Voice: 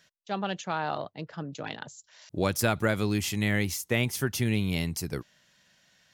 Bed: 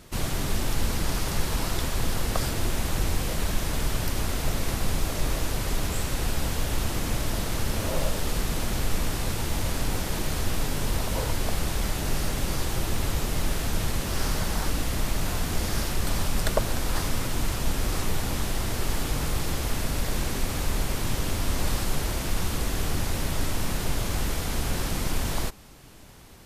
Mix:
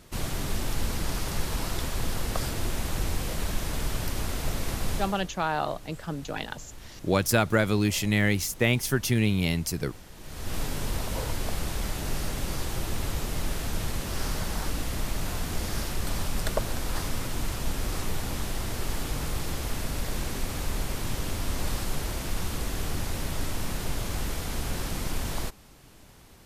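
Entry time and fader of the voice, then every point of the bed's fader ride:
4.70 s, +3.0 dB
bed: 4.96 s -3 dB
5.31 s -19 dB
10.15 s -19 dB
10.56 s -3.5 dB

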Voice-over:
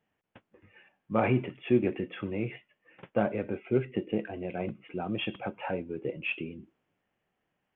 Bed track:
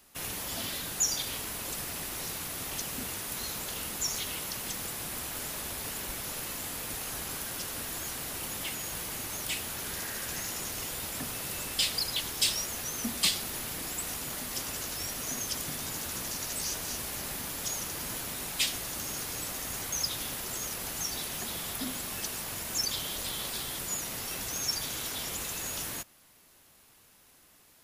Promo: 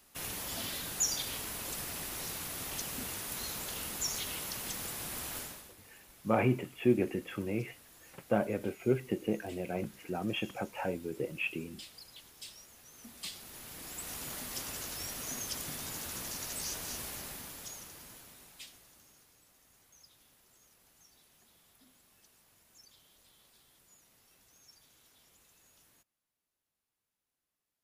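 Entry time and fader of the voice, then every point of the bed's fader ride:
5.15 s, -2.0 dB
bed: 5.38 s -3 dB
5.76 s -21 dB
12.83 s -21 dB
14.23 s -4.5 dB
17.05 s -4.5 dB
19.39 s -29 dB

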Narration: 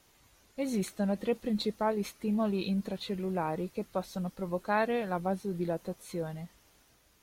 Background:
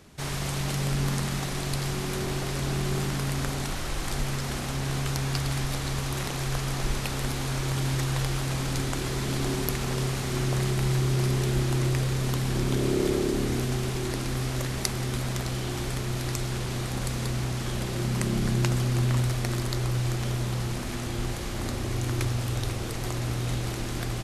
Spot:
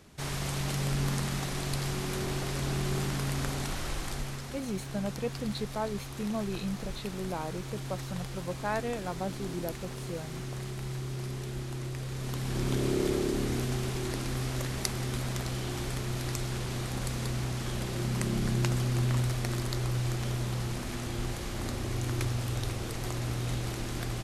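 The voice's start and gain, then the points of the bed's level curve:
3.95 s, -3.5 dB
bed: 3.9 s -3 dB
4.61 s -11.5 dB
11.95 s -11.5 dB
12.68 s -3.5 dB

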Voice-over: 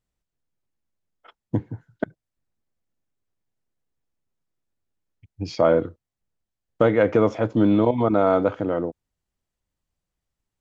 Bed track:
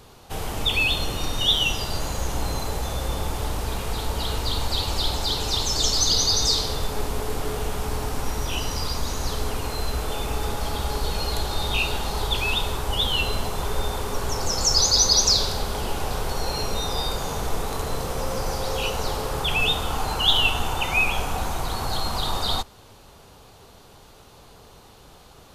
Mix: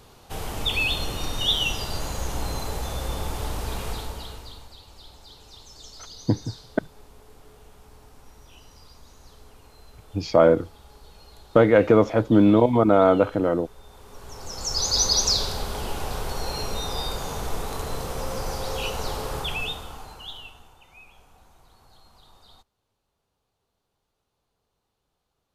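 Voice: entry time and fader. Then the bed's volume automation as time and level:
4.75 s, +2.0 dB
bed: 3.89 s -2.5 dB
4.78 s -23 dB
13.81 s -23 dB
14.99 s -3 dB
19.36 s -3 dB
20.8 s -29 dB

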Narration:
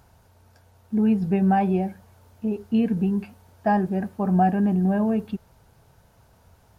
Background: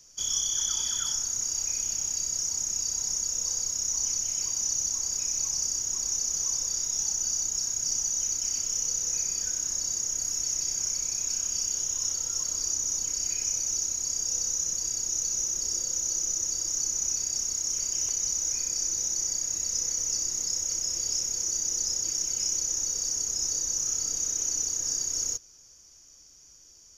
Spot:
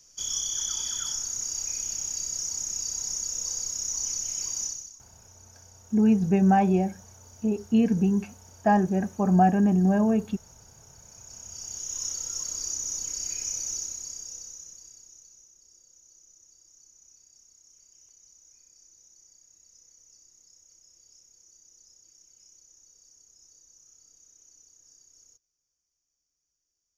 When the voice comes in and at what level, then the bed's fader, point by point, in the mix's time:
5.00 s, 0.0 dB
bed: 4.64 s -2 dB
5.05 s -25.5 dB
10.88 s -25.5 dB
11.97 s -3 dB
13.71 s -3 dB
15.54 s -28 dB

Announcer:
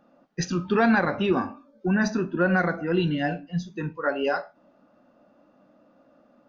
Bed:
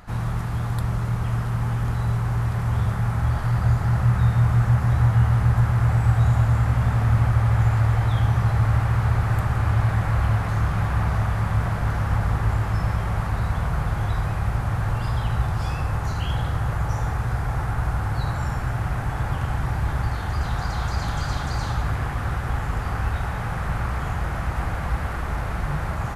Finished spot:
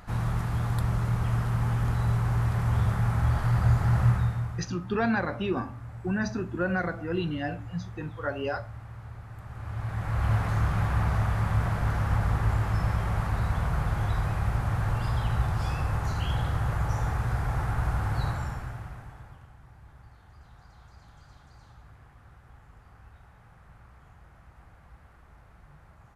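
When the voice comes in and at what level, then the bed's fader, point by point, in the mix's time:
4.20 s, -6.0 dB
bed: 4.08 s -2.5 dB
4.75 s -22 dB
9.34 s -22 dB
10.33 s -3.5 dB
18.26 s -3.5 dB
19.54 s -27.5 dB

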